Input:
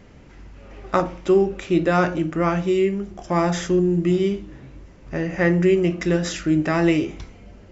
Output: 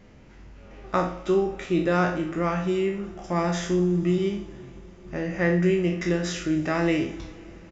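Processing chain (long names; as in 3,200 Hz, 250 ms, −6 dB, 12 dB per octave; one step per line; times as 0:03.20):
peak hold with a decay on every bin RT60 0.44 s
coupled-rooms reverb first 0.46 s, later 5 s, from −18 dB, DRR 8.5 dB
downsampling to 16,000 Hz
level −5.5 dB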